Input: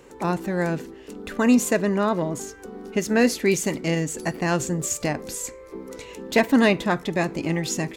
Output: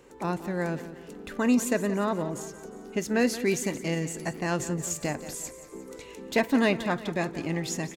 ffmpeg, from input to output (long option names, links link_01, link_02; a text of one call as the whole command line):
ffmpeg -i in.wav -af "aecho=1:1:177|354|531|708|885:0.2|0.0978|0.0479|0.0235|0.0115,volume=-5.5dB" out.wav